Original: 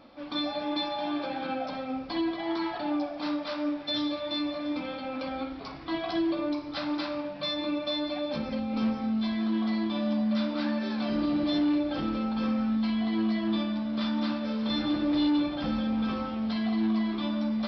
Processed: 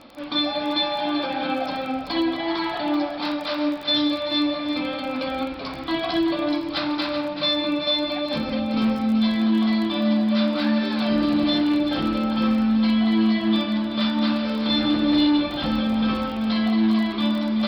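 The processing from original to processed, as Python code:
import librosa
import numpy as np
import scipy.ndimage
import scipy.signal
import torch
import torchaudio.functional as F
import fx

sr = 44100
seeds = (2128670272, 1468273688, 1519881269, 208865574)

y = scipy.signal.sosfilt(scipy.signal.butter(4, 4500.0, 'lowpass', fs=sr, output='sos'), x)
y = fx.high_shelf(y, sr, hz=3400.0, db=9.0)
y = y + 10.0 ** (-9.0 / 20.0) * np.pad(y, (int(382 * sr / 1000.0), 0))[:len(y)]
y = fx.dmg_crackle(y, sr, seeds[0], per_s=21.0, level_db=-37.0)
y = F.gain(torch.from_numpy(y), 6.0).numpy()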